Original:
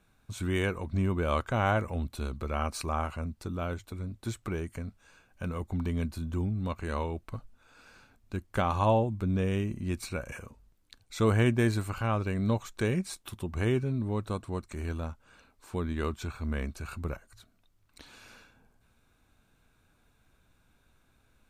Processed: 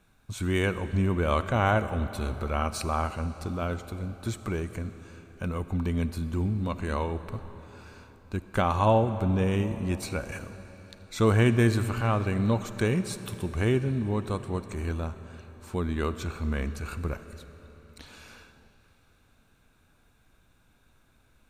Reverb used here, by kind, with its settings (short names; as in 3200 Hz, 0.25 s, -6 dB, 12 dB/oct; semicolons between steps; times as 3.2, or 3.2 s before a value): digital reverb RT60 4.2 s, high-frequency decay 0.9×, pre-delay 15 ms, DRR 11.5 dB; gain +3 dB